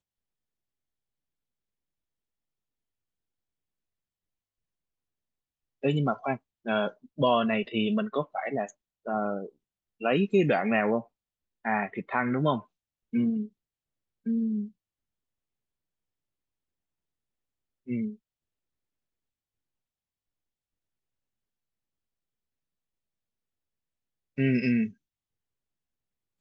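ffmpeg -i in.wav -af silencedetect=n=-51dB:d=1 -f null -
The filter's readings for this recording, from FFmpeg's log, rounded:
silence_start: 0.00
silence_end: 5.83 | silence_duration: 5.83
silence_start: 14.71
silence_end: 17.87 | silence_duration: 3.16
silence_start: 18.16
silence_end: 24.37 | silence_duration: 6.21
silence_start: 24.93
silence_end: 26.40 | silence_duration: 1.47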